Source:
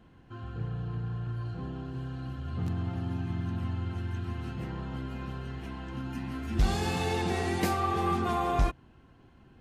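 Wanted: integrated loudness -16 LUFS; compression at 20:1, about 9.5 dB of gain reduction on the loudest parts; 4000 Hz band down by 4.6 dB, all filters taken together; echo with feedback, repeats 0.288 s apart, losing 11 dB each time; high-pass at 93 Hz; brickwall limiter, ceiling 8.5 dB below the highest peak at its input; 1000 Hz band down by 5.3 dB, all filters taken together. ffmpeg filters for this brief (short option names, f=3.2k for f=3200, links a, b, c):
-af "highpass=93,equalizer=f=1k:t=o:g=-7,equalizer=f=4k:t=o:g=-5.5,acompressor=threshold=-34dB:ratio=20,alimiter=level_in=9.5dB:limit=-24dB:level=0:latency=1,volume=-9.5dB,aecho=1:1:288|576|864:0.282|0.0789|0.0221,volume=26dB"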